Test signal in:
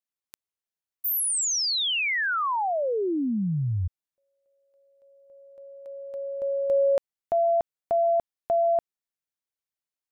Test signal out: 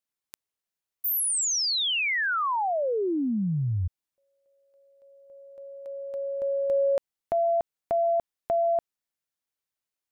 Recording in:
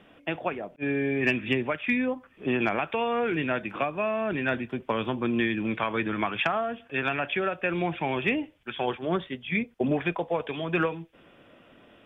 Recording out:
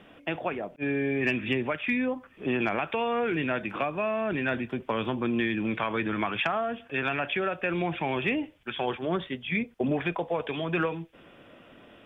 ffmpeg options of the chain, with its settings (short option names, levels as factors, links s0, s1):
-af "acompressor=threshold=0.0251:ratio=1.5:attack=2.8:release=77:knee=6:detection=peak,volume=1.33"